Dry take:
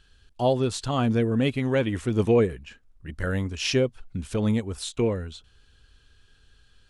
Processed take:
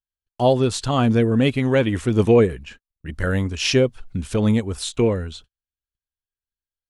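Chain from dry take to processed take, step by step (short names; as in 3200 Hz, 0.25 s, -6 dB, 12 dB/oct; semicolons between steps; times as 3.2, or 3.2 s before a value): gate -47 dBFS, range -46 dB; gain +5.5 dB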